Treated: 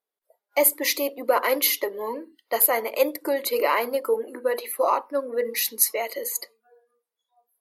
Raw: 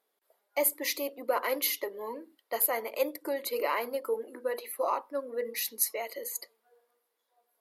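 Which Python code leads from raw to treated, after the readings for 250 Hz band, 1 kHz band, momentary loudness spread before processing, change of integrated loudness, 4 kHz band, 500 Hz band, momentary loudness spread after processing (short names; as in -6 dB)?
+8.0 dB, +8.0 dB, 10 LU, +8.0 dB, +8.0 dB, +8.0 dB, 10 LU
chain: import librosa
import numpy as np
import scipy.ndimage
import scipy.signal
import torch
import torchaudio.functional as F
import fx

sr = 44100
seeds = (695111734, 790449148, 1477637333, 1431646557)

y = fx.noise_reduce_blind(x, sr, reduce_db=19)
y = y * 10.0 ** (8.0 / 20.0)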